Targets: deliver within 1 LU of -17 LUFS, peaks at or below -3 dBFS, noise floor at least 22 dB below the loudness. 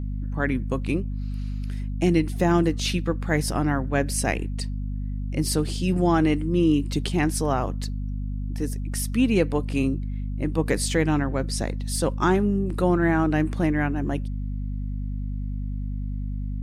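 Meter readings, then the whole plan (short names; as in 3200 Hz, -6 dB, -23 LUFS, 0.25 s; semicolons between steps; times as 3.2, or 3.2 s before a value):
hum 50 Hz; harmonics up to 250 Hz; hum level -26 dBFS; loudness -25.0 LUFS; peak -8.5 dBFS; loudness target -17.0 LUFS
-> de-hum 50 Hz, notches 5; gain +8 dB; limiter -3 dBFS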